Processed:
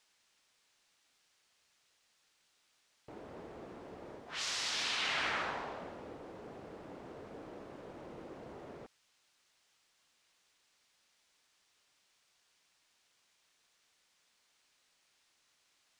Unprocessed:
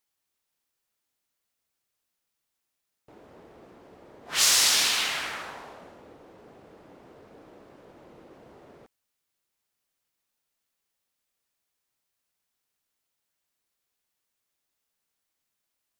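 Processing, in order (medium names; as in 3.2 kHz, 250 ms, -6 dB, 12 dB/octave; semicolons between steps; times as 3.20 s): reverse; compression 10:1, threshold -32 dBFS, peak gain reduction 15 dB; reverse; added noise blue -64 dBFS; distance through air 110 m; trim +2.5 dB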